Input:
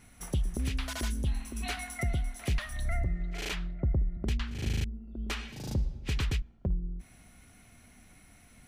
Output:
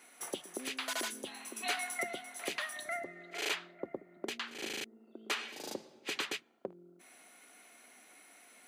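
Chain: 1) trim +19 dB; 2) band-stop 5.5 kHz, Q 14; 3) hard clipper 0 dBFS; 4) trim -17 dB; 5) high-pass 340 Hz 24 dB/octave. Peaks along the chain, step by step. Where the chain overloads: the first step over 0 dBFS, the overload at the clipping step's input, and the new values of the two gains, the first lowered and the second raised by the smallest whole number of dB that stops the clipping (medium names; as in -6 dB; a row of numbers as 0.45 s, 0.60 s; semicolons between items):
-2.0 dBFS, -2.0 dBFS, -2.0 dBFS, -19.0 dBFS, -21.0 dBFS; nothing clips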